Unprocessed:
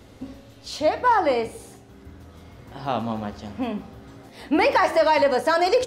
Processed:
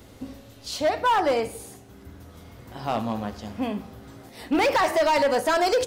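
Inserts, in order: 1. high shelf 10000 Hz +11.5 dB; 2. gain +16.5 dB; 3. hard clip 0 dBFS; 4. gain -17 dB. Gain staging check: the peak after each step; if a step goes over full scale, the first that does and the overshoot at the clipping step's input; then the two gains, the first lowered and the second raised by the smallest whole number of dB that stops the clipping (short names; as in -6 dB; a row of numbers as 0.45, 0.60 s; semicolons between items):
-9.5, +7.0, 0.0, -17.0 dBFS; step 2, 7.0 dB; step 2 +9.5 dB, step 4 -10 dB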